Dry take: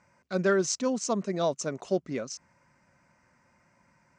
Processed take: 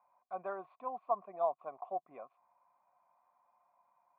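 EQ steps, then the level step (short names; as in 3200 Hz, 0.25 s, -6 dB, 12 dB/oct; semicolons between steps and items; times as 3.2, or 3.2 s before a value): vocal tract filter a; air absorption 150 m; tilt +4.5 dB/oct; +8.0 dB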